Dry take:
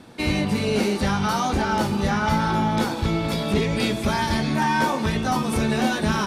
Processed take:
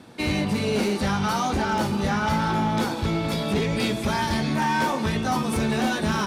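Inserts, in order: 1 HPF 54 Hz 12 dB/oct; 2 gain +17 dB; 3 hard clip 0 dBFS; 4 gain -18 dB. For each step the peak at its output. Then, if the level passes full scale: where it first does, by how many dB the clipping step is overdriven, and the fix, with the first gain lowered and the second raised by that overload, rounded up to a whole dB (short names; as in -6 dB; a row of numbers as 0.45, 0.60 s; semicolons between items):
-10.0, +7.0, 0.0, -18.0 dBFS; step 2, 7.0 dB; step 2 +10 dB, step 4 -11 dB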